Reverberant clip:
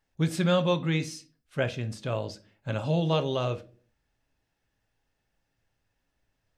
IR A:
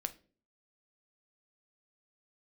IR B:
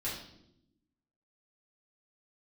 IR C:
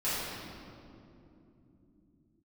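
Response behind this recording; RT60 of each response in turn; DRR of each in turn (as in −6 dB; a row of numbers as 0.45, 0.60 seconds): A; non-exponential decay, 0.80 s, 3.0 s; 9.0, −8.5, −14.0 decibels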